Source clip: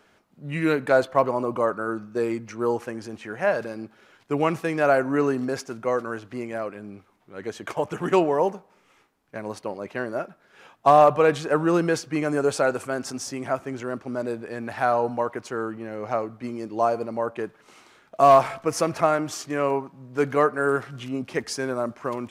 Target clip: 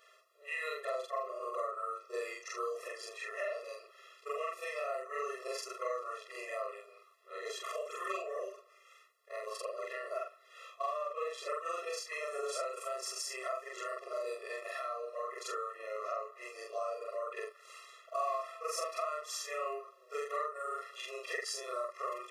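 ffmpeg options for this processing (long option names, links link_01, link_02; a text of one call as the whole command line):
ffmpeg -i in.wav -af "afftfilt=real='re':imag='-im':win_size=4096:overlap=0.75,highpass=850,acompressor=threshold=-41dB:ratio=6,afftfilt=real='re*eq(mod(floor(b*sr/1024/350),2),1)':imag='im*eq(mod(floor(b*sr/1024/350),2),1)':win_size=1024:overlap=0.75,volume=8dB" out.wav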